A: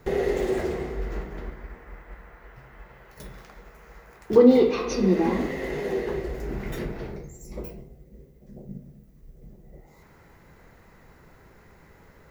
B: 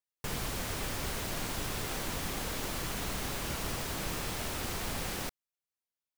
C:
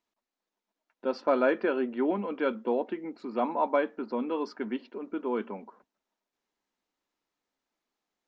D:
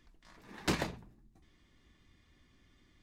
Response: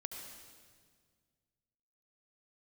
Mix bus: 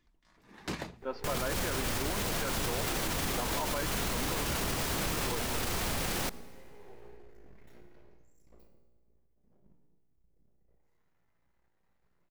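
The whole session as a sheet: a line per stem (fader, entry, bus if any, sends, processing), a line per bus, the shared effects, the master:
-12.0 dB, 0.95 s, no bus, no send, half-wave rectifier; feedback comb 59 Hz, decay 1.2 s, harmonics all, mix 80%
0.0 dB, 1.00 s, bus A, send -11 dB, none
-11.0 dB, 0.00 s, no bus, no send, peaking EQ 1.5 kHz +8 dB 2.8 oct
-7.5 dB, 0.00 s, bus A, send -20 dB, auto duck -15 dB, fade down 1.55 s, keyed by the third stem
bus A: 0.0 dB, level rider gain up to 11 dB; peak limiter -22.5 dBFS, peak gain reduction 10 dB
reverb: on, RT60 1.8 s, pre-delay 65 ms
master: peak limiter -23 dBFS, peak gain reduction 7 dB

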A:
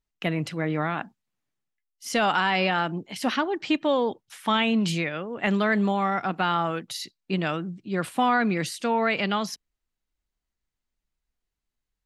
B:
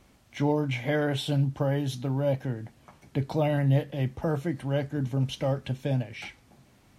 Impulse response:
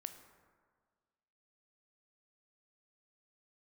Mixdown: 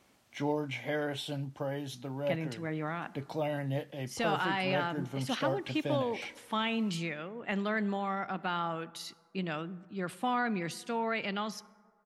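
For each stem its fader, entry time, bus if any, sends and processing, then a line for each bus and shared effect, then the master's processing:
-12.0 dB, 2.05 s, send -3.5 dB, none
-4.5 dB, 0.00 s, no send, high-pass 320 Hz 6 dB/octave; gain riding within 5 dB 2 s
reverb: on, RT60 1.7 s, pre-delay 12 ms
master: none

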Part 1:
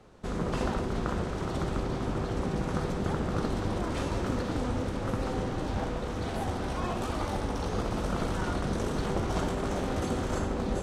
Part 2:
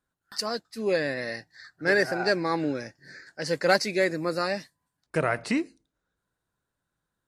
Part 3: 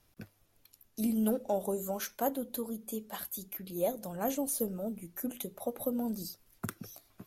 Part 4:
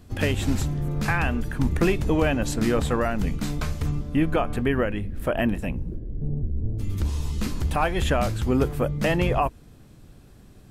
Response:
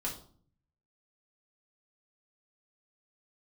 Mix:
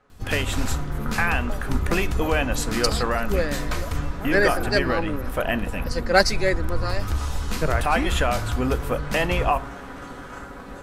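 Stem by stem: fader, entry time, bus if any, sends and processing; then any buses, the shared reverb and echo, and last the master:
-5.5 dB, 0.00 s, send -9 dB, peaking EQ 1.5 kHz +12.5 dB 1.4 oct; feedback comb 140 Hz, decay 0.17 s, harmonics all, mix 80%
-1.0 dB, 2.45 s, no send, three bands expanded up and down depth 100%
-1.5 dB, 0.00 s, no send, local Wiener filter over 41 samples; compression, threshold -32 dBFS, peak gain reduction 6.5 dB
+2.5 dB, 0.10 s, send -12.5 dB, peaking EQ 210 Hz -9 dB 2.6 oct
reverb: on, RT60 0.50 s, pre-delay 4 ms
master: none

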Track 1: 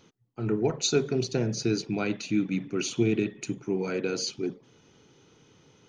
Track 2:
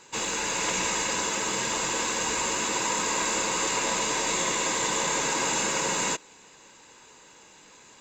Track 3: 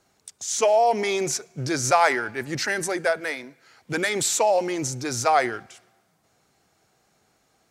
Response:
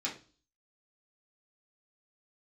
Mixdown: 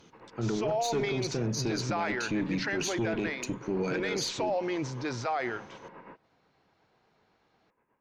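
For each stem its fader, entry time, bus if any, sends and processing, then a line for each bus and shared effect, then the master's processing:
+3.0 dB, 0.00 s, no send, valve stage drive 20 dB, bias 0.4
-14.5 dB, 0.00 s, no send, Bessel low-pass 1.3 kHz, order 8; tremolo 8.2 Hz, depth 59%
-4.0 dB, 0.00 s, no send, low-pass 4.4 kHz 24 dB/octave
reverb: none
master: peak limiter -22 dBFS, peak gain reduction 12.5 dB

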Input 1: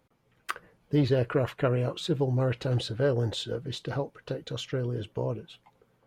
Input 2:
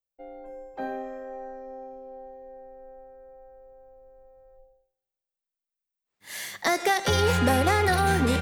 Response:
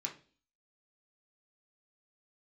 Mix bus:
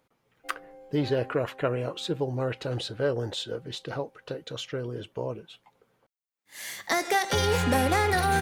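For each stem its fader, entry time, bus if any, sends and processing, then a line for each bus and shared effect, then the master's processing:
+1.0 dB, 0.00 s, no send, bass shelf 200 Hz -9.5 dB
-2.5 dB, 0.25 s, send -12 dB, auto duck -20 dB, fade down 1.80 s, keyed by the first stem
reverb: on, RT60 0.40 s, pre-delay 3 ms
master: none

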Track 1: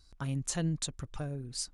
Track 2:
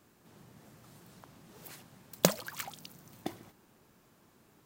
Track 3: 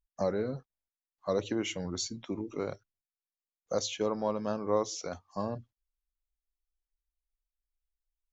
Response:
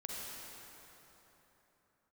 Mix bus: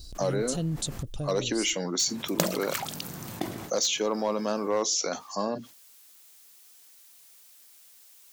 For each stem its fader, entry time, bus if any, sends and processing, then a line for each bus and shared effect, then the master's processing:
-5.0 dB, 0.00 s, no send, high-order bell 1.4 kHz -15 dB
-1.0 dB, 0.15 s, muted 1.03–2.01 s, no send, de-hum 46.12 Hz, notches 15
-2.0 dB, 0.00 s, no send, high-pass 200 Hz 24 dB/octave; treble shelf 3.1 kHz +12 dB; hard clipper -21 dBFS, distortion -20 dB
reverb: none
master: level flattener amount 50%

